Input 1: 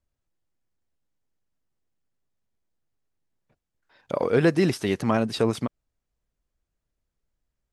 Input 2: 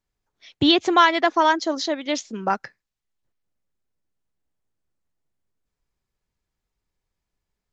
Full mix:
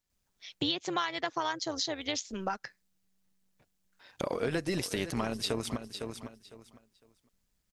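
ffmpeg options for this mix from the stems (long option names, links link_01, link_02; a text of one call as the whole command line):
ffmpeg -i stem1.wav -i stem2.wav -filter_complex "[0:a]adelay=100,volume=1.5dB,asplit=2[link_01][link_02];[link_02]volume=-16dB[link_03];[1:a]volume=-4dB[link_04];[link_03]aecho=0:1:505|1010|1515:1|0.21|0.0441[link_05];[link_01][link_04][link_05]amix=inputs=3:normalize=0,highshelf=frequency=2500:gain=10.5,tremolo=f=190:d=0.571,acompressor=threshold=-30dB:ratio=4" out.wav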